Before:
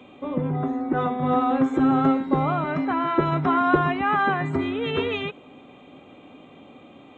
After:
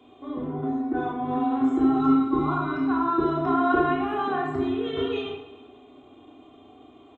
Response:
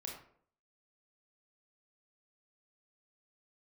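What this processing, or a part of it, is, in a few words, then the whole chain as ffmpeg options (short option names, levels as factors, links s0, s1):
microphone above a desk: -filter_complex "[0:a]aecho=1:1:2.8:0.85[s0];[1:a]atrim=start_sample=2205[s1];[s0][s1]afir=irnorm=-1:irlink=0,asettb=1/sr,asplit=3[s2][s3][s4];[s2]atrim=end=2.004[s5];[s3]atrim=start=2:end=3.24,asetpts=PTS-STARTPTS,afade=t=in:d=0.004:c=qsin,afade=t=out:st=1.236:d=0.004:c=qsin,aecho=1:1:0.8:0.59,atrim=end_sample=54684[s6];[s4]atrim=start=3.236[s7];[s5][s6]acrossfade=d=0.004:c1=hsin:c2=qsin[s8];[s8][s7]acrossfade=d=0.004:c1=qsin:c2=hsin,equalizer=f=2300:t=o:w=0.47:g=-7,aecho=1:1:109|218|327|436|545|654:0.178|0.105|0.0619|0.0365|0.0215|0.0127,volume=0.668"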